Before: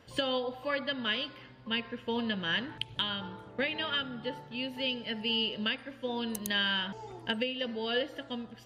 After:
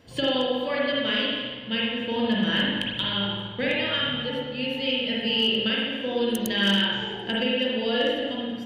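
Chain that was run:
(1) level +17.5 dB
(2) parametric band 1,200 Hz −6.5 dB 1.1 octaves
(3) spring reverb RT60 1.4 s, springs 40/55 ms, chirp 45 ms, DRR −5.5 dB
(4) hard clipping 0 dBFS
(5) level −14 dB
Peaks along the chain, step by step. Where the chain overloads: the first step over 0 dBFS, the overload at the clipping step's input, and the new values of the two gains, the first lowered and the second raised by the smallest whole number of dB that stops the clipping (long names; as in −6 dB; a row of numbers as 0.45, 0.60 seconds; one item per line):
+1.5, +0.5, +5.0, 0.0, −14.0 dBFS
step 1, 5.0 dB
step 1 +12.5 dB, step 5 −9 dB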